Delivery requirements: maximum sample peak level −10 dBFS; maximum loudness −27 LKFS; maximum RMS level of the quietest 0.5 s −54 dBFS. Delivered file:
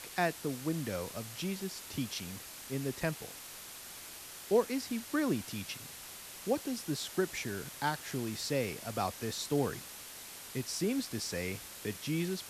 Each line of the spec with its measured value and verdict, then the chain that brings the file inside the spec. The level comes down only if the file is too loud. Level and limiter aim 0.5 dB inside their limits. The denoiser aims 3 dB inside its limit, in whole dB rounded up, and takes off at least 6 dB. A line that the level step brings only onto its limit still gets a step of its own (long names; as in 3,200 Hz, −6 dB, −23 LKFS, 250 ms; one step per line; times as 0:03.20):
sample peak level −16.0 dBFS: in spec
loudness −36.5 LKFS: in spec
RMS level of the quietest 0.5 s −48 dBFS: out of spec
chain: broadband denoise 9 dB, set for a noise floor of −48 dBFS